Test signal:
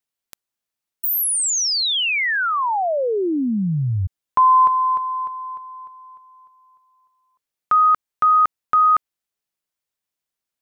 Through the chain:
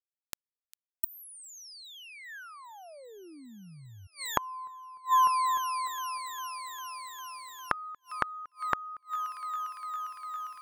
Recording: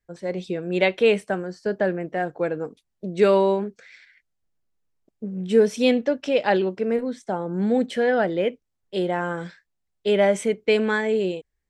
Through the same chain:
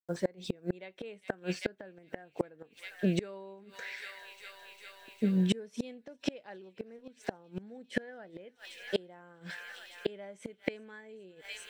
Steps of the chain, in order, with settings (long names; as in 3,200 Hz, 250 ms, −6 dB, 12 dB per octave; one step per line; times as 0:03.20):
delay with a high-pass on its return 402 ms, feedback 84%, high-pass 2,500 Hz, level −16 dB
bit reduction 11 bits
gate with flip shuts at −19 dBFS, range −31 dB
dynamic equaliser 1,700 Hz, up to +5 dB, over −59 dBFS, Q 3.5
level +3 dB